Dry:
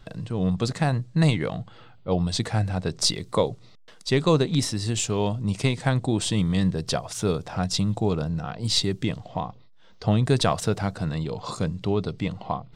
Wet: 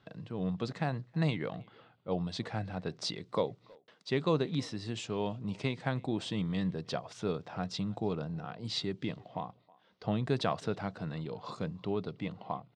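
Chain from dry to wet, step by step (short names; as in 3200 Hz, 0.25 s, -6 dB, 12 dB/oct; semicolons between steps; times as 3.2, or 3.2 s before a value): BPF 140–3900 Hz; speakerphone echo 0.32 s, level -24 dB; gain -8.5 dB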